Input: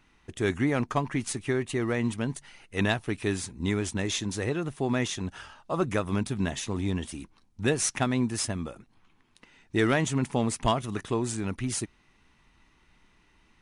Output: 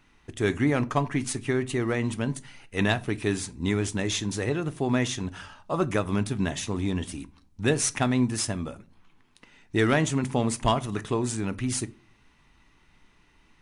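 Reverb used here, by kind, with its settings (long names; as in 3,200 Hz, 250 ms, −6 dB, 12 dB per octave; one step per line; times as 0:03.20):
rectangular room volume 230 cubic metres, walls furnished, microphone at 0.33 metres
level +1.5 dB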